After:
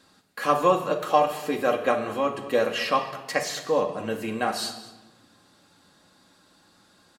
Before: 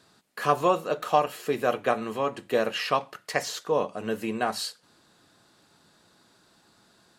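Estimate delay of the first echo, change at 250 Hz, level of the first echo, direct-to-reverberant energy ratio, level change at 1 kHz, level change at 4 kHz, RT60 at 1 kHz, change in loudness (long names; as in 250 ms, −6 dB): 216 ms, +2.0 dB, −18.0 dB, 2.5 dB, +2.0 dB, +1.5 dB, 1.0 s, +2.0 dB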